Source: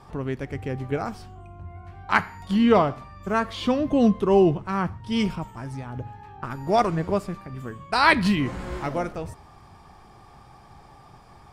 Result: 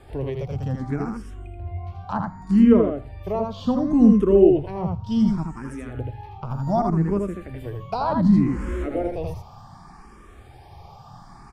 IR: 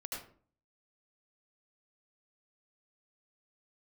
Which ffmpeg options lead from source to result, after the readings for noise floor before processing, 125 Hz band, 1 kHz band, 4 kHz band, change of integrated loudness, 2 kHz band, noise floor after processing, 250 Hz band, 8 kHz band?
-50 dBFS, +4.5 dB, -4.0 dB, under -10 dB, +2.5 dB, -15.0 dB, -46 dBFS, +5.0 dB, no reading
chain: -filter_complex "[0:a]lowshelf=f=110:g=5.5,aecho=1:1:80:0.631,acrossover=split=780[s0][s1];[s1]acompressor=threshold=0.00891:ratio=8[s2];[s0][s2]amix=inputs=2:normalize=0,asplit=2[s3][s4];[s4]afreqshift=0.67[s5];[s3][s5]amix=inputs=2:normalize=1,volume=1.58"

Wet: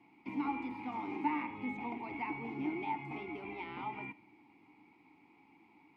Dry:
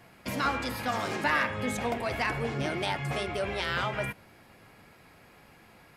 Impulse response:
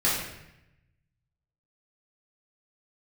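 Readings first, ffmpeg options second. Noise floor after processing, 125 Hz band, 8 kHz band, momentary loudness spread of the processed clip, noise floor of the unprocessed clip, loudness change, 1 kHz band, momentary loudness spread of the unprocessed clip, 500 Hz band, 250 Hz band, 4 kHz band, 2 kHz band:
-65 dBFS, -16.5 dB, under -35 dB, 8 LU, -57 dBFS, -9.0 dB, -7.0 dB, 5 LU, -14.5 dB, -2.5 dB, -21.5 dB, -13.5 dB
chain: -filter_complex "[0:a]asplit=2[s0][s1];[1:a]atrim=start_sample=2205[s2];[s1][s2]afir=irnorm=-1:irlink=0,volume=0.0251[s3];[s0][s3]amix=inputs=2:normalize=0,acrossover=split=2800[s4][s5];[s5]acompressor=threshold=0.00316:ratio=4:attack=1:release=60[s6];[s4][s6]amix=inputs=2:normalize=0,asplit=3[s7][s8][s9];[s7]bandpass=f=300:t=q:w=8,volume=1[s10];[s8]bandpass=f=870:t=q:w=8,volume=0.501[s11];[s9]bandpass=f=2240:t=q:w=8,volume=0.355[s12];[s10][s11][s12]amix=inputs=3:normalize=0,volume=1.68"

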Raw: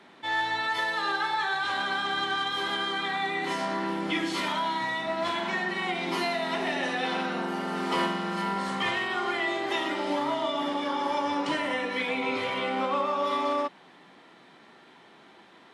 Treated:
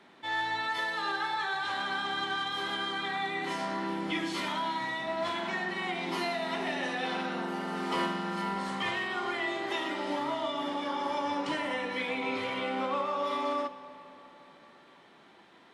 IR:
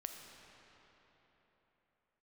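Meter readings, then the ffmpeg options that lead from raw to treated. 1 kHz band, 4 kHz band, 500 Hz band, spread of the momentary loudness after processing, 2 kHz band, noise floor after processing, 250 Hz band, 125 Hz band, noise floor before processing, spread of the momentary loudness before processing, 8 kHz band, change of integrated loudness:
-4.0 dB, -4.0 dB, -4.0 dB, 2 LU, -4.0 dB, -57 dBFS, -3.5 dB, -3.0 dB, -54 dBFS, 2 LU, -4.0 dB, -4.0 dB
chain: -filter_complex "[0:a]asplit=2[s0][s1];[1:a]atrim=start_sample=2205,lowshelf=f=81:g=12[s2];[s1][s2]afir=irnorm=-1:irlink=0,volume=0.668[s3];[s0][s3]amix=inputs=2:normalize=0,volume=0.447"

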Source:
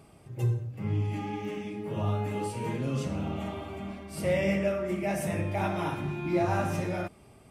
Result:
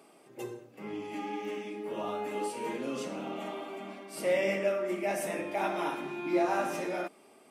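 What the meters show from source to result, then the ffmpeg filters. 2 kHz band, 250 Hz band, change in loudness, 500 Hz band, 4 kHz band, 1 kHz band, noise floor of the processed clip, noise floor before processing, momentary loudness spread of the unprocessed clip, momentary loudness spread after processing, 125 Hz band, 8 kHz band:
0.0 dB, -4.5 dB, -2.5 dB, 0.0 dB, 0.0 dB, 0.0 dB, -59 dBFS, -55 dBFS, 9 LU, 14 LU, -20.0 dB, 0.0 dB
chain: -af "highpass=f=260:w=0.5412,highpass=f=260:w=1.3066"

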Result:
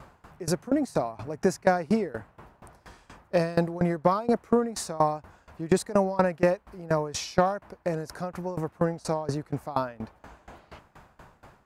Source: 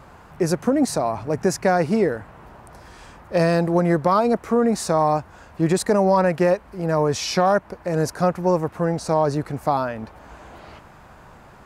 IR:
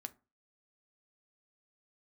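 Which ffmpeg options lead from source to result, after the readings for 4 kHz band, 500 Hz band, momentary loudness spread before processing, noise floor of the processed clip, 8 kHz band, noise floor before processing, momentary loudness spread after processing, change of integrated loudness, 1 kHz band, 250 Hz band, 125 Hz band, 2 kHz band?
-7.5 dB, -7.0 dB, 7 LU, -63 dBFS, -6.5 dB, -47 dBFS, 10 LU, -7.0 dB, -7.0 dB, -6.5 dB, -7.0 dB, -6.5 dB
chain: -af "aeval=exprs='val(0)*pow(10,-22*if(lt(mod(4.2*n/s,1),2*abs(4.2)/1000),1-mod(4.2*n/s,1)/(2*abs(4.2)/1000),(mod(4.2*n/s,1)-2*abs(4.2)/1000)/(1-2*abs(4.2)/1000))/20)':c=same"

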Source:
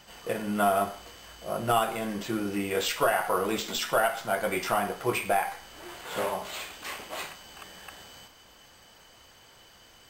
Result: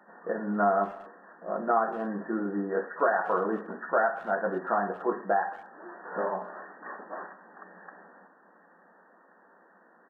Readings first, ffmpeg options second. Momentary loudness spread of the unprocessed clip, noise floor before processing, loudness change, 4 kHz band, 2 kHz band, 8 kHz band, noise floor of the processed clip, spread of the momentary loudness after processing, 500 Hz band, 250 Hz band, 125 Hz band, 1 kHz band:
19 LU, -55 dBFS, -0.5 dB, under -30 dB, -1.5 dB, under -40 dB, -60 dBFS, 18 LU, 0.0 dB, 0.0 dB, -4.5 dB, 0.0 dB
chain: -filter_complex "[0:a]afftfilt=real='re*between(b*sr/4096,170,1900)':imag='im*between(b*sr/4096,170,1900)':win_size=4096:overlap=0.75,asplit=2[s0][s1];[s1]adelay=230,highpass=300,lowpass=3400,asoftclip=type=hard:threshold=0.0841,volume=0.0794[s2];[s0][s2]amix=inputs=2:normalize=0"

